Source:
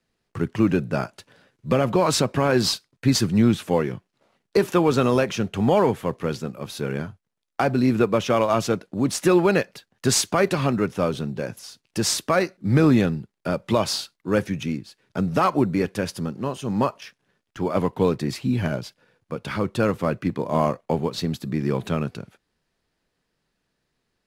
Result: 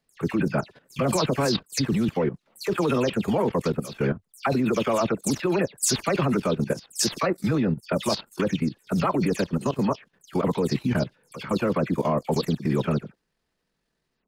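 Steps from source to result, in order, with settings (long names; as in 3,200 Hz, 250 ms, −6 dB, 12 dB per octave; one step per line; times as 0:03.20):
every frequency bin delayed by itself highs early, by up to 210 ms
tempo change 1.7×
output level in coarse steps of 14 dB
level +6 dB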